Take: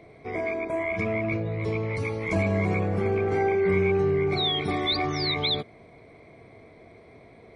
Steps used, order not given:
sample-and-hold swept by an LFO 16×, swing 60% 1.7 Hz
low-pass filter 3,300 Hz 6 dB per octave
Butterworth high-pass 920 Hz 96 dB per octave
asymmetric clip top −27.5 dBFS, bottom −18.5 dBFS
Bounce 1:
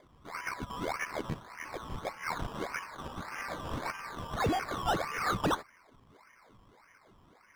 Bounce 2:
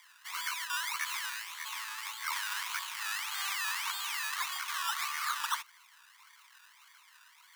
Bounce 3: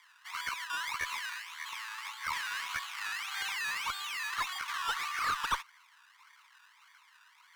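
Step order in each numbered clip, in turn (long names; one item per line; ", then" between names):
asymmetric clip, then Butterworth high-pass, then sample-and-hold swept by an LFO, then low-pass filter
low-pass filter, then asymmetric clip, then sample-and-hold swept by an LFO, then Butterworth high-pass
sample-and-hold swept by an LFO, then Butterworth high-pass, then asymmetric clip, then low-pass filter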